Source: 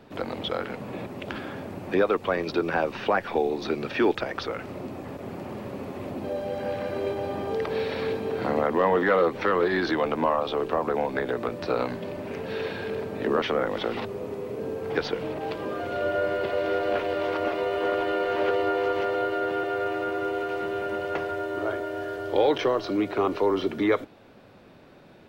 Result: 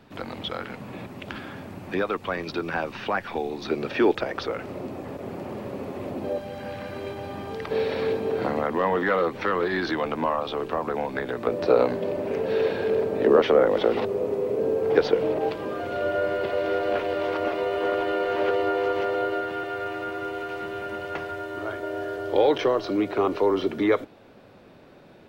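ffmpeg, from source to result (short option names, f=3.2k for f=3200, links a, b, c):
-af "asetnsamples=n=441:p=0,asendcmd='3.71 equalizer g 3;6.38 equalizer g -7;7.71 equalizer g 3.5;8.48 equalizer g -2.5;11.47 equalizer g 9;15.49 equalizer g 1;19.41 equalizer g -5;21.83 equalizer g 2',equalizer=f=480:t=o:w=1.4:g=-5.5"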